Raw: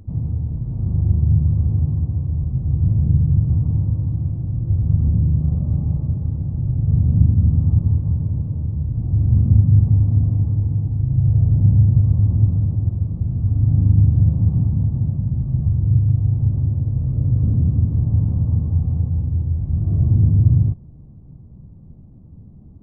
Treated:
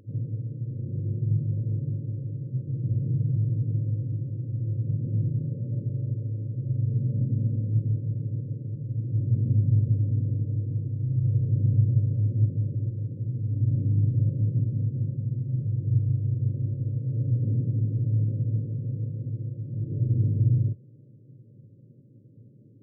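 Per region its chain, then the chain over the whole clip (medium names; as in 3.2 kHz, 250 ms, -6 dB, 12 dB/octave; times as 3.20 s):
5.53–7.70 s: hum notches 50/100/150/200/250/300/350/400 Hz + delay 84 ms -7.5 dB
whole clip: FFT band-pass 100–600 Hz; peaking EQ 180 Hz -13.5 dB 0.86 oct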